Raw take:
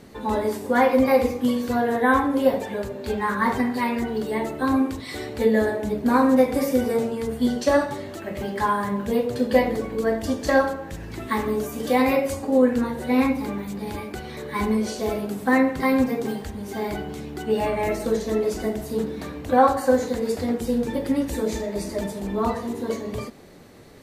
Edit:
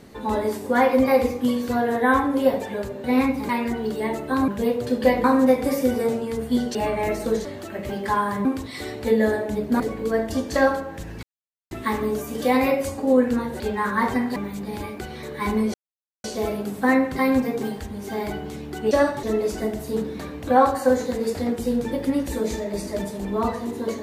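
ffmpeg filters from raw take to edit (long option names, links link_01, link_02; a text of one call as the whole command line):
ffmpeg -i in.wav -filter_complex "[0:a]asplit=15[link_01][link_02][link_03][link_04][link_05][link_06][link_07][link_08][link_09][link_10][link_11][link_12][link_13][link_14][link_15];[link_01]atrim=end=3.042[link_16];[link_02]atrim=start=13.048:end=13.502[link_17];[link_03]atrim=start=3.798:end=4.792[link_18];[link_04]atrim=start=8.968:end=9.732[link_19];[link_05]atrim=start=6.138:end=7.652[link_20];[link_06]atrim=start=17.548:end=18.252[link_21];[link_07]atrim=start=7.968:end=8.972[link_22];[link_08]atrim=start=4.788:end=6.142[link_23];[link_09]atrim=start=9.728:end=11.16,asetpts=PTS-STARTPTS,afade=type=out:start_time=1.428:duration=0.004:curve=hsin,apad=pad_dur=0.48[link_24];[link_10]atrim=start=11.16:end=13.052,asetpts=PTS-STARTPTS,afade=type=in:duration=0.004:curve=hsin[link_25];[link_11]atrim=start=3.038:end=3.802[link_26];[link_12]atrim=start=13.498:end=14.88,asetpts=PTS-STARTPTS,afade=type=out:start_time=1.378:duration=0.004:curve=hsin,apad=pad_dur=0.5[link_27];[link_13]atrim=start=14.88:end=17.552,asetpts=PTS-STARTPTS,afade=type=in:duration=0.004:curve=hsin[link_28];[link_14]atrim=start=7.648:end=7.972[link_29];[link_15]atrim=start=18.248[link_30];[link_16][link_17]acrossfade=duration=0.004:curve1=hsin:curve2=hsin[link_31];[link_31][link_18]acrossfade=duration=0.004:curve1=hsin:curve2=hsin[link_32];[link_32][link_19]acrossfade=duration=0.004:curve1=hsin:curve2=hsin[link_33];[link_33][link_20]acrossfade=duration=0.004:curve1=hsin:curve2=hsin[link_34];[link_34][link_21]acrossfade=duration=0.004:curve1=hsin:curve2=hsin[link_35];[link_35][link_22]acrossfade=duration=0.004:curve1=hsin:curve2=hsin[link_36];[link_36][link_23]acrossfade=duration=0.004:curve1=hsin:curve2=hsin[link_37];[link_24][link_25]concat=n=2:v=0:a=1[link_38];[link_37][link_38]acrossfade=duration=0.004:curve1=hsin:curve2=hsin[link_39];[link_39][link_26]acrossfade=duration=0.004:curve1=hsin:curve2=hsin[link_40];[link_27][link_28]concat=n=2:v=0:a=1[link_41];[link_40][link_41]acrossfade=duration=0.004:curve1=hsin:curve2=hsin[link_42];[link_42][link_29]acrossfade=duration=0.004:curve1=hsin:curve2=hsin[link_43];[link_43][link_30]acrossfade=duration=0.004:curve1=hsin:curve2=hsin" out.wav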